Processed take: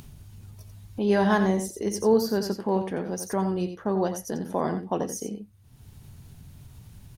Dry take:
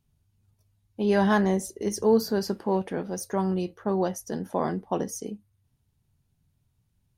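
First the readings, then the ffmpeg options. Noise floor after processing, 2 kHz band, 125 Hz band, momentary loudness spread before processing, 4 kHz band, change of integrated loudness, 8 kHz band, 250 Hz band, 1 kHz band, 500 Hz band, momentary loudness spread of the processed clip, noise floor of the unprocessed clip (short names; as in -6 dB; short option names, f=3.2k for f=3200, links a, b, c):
-52 dBFS, +0.5 dB, +0.5 dB, 11 LU, +0.5 dB, +0.5 dB, +1.0 dB, +0.5 dB, +0.5 dB, +0.5 dB, 10 LU, -72 dBFS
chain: -af "aecho=1:1:88:0.355,acompressor=mode=upward:threshold=-27dB:ratio=2.5"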